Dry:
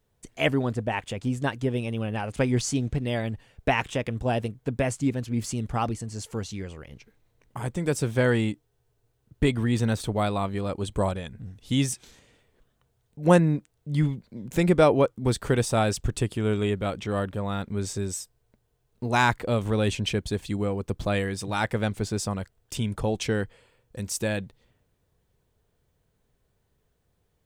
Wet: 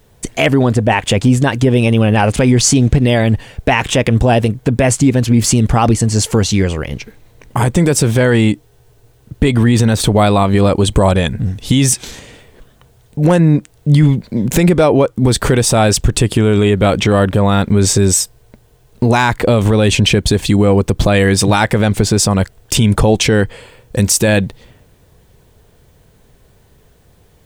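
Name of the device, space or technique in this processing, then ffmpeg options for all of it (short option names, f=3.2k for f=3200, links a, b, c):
mastering chain: -af "equalizer=f=1.3k:t=o:w=0.35:g=-2,acompressor=threshold=-28dB:ratio=2,asoftclip=type=hard:threshold=-16.5dB,alimiter=level_in=23dB:limit=-1dB:release=50:level=0:latency=1,volume=-1dB"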